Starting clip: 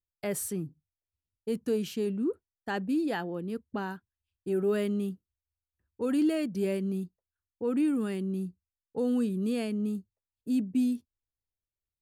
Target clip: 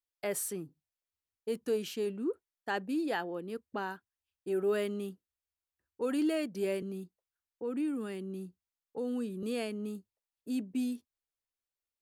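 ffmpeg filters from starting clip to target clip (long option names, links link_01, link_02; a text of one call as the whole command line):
ffmpeg -i in.wav -filter_complex "[0:a]asettb=1/sr,asplit=3[link_01][link_02][link_03];[link_01]atrim=end=6.824[link_04];[link_02]atrim=start=6.82:end=9.43,asetpts=PTS-STARTPTS,afade=type=in:duration=0.004:curve=qsin,afade=type=out:start_time=2.606:duration=0.004:curve=qsin,acrossover=split=330[link_05][link_06];[link_06]acompressor=threshold=-47dB:ratio=1.5[link_07];[link_05][link_07]amix=inputs=2:normalize=0[link_08];[link_03]atrim=start=9.426[link_09];[link_04][link_08]acrossfade=duration=0.004:curve1=hsin:curve2=qsin[link_10];[link_10][link_09]acrossfade=duration=0.004:curve1=qsin:curve2=hsin,bass=frequency=250:gain=-13,treble=frequency=4000:gain=-1" out.wav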